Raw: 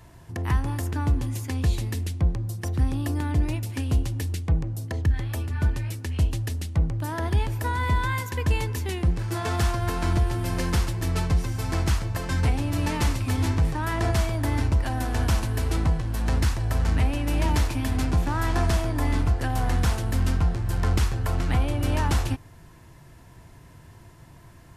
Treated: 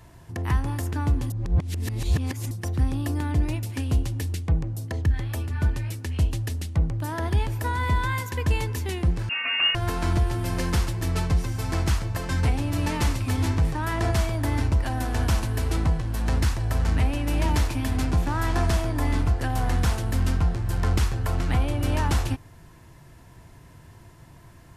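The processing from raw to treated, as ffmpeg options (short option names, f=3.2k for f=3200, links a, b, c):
-filter_complex "[0:a]asettb=1/sr,asplit=3[a][b][c];[a]atrim=end=9.294[d];[b]atrim=start=9.29:end=9.75,asetpts=PTS-STARTPTS,afade=t=in:d=0.004:c=qsin,afade=t=out:st=0.456:d=0.004:c=qsin,lowpass=f=2.5k:t=q:w=0.5098,lowpass=f=2.5k:t=q:w=0.6013,lowpass=f=2.5k:t=q:w=0.9,lowpass=f=2.5k:t=q:w=2.563,afreqshift=-2900[e];[c]atrim=start=9.746[f];[d][e]acrossfade=d=0.004:c1=hsin:c2=qsin[g];[g][f]acrossfade=d=0.004:c1=qsin:c2=hsin,asplit=3[h][i][j];[h]atrim=end=1.302[k];[i]atrim=start=1.298:end=2.512,asetpts=PTS-STARTPTS,areverse[l];[j]atrim=start=2.508[m];[k][l]acrossfade=d=0.004:c1=hsin:c2=hsin[n];[n][m]acrossfade=d=0.004:c1=hsin:c2=hsin"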